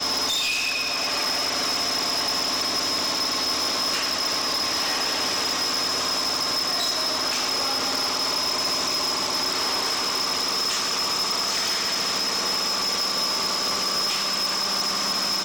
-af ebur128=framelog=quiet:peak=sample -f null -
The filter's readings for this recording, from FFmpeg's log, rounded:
Integrated loudness:
  I:         -21.9 LUFS
  Threshold: -31.9 LUFS
Loudness range:
  LRA:         0.2 LU
  Threshold: -41.9 LUFS
  LRA low:   -22.0 LUFS
  LRA high:  -21.8 LUFS
Sample peak:
  Peak:      -19.4 dBFS